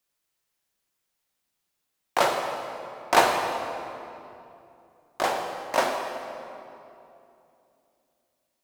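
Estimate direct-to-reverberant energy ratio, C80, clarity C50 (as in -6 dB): 2.0 dB, 5.0 dB, 4.0 dB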